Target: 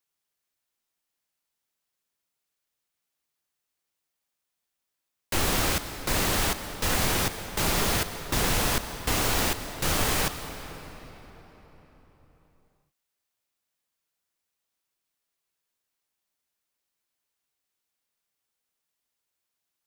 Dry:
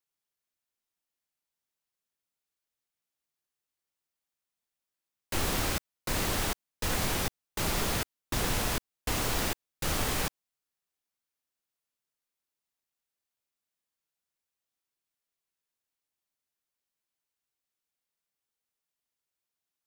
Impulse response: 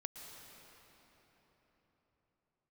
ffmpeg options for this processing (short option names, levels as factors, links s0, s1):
-filter_complex "[0:a]asplit=2[s0][s1];[1:a]atrim=start_sample=2205,lowshelf=f=390:g=-4[s2];[s1][s2]afir=irnorm=-1:irlink=0,volume=1.41[s3];[s0][s3]amix=inputs=2:normalize=0"